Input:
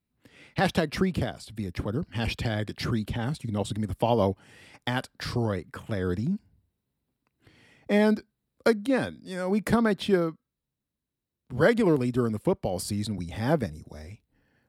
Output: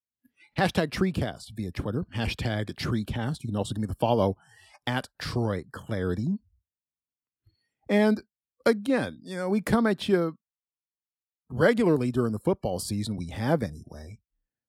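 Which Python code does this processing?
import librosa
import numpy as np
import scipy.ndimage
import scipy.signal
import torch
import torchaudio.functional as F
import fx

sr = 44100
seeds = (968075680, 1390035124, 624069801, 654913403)

y = fx.noise_reduce_blind(x, sr, reduce_db=28)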